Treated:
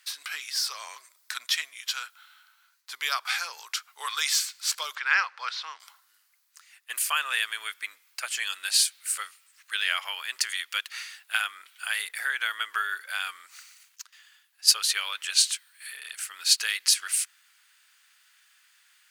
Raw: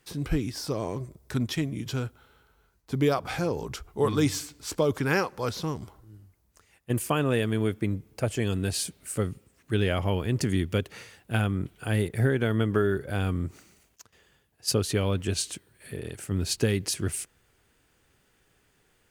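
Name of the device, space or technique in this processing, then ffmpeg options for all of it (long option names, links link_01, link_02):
headphones lying on a table: -filter_complex "[0:a]highpass=frequency=1300:width=0.5412,highpass=frequency=1300:width=1.3066,equalizer=frequency=4300:width_type=o:width=0.57:gain=4,asettb=1/sr,asplit=3[link_01][link_02][link_03];[link_01]atrim=end=4.954[link_04];[link_02]atrim=start=4.95:end=5.8,asetpts=PTS-STARTPTS,afade=type=in:duration=0.004:curve=qsin,afade=type=out:start_time=0.846:duration=0.004:curve=qsin,lowpass=3200[link_05];[link_03]atrim=start=5.796[link_06];[link_04][link_05]acrossfade=duration=0.004:curve1=hsin:curve2=qsin[link_07];[link_07][link_06]acrossfade=duration=0.004:curve1=qsin:curve2=hsin,volume=7.5dB"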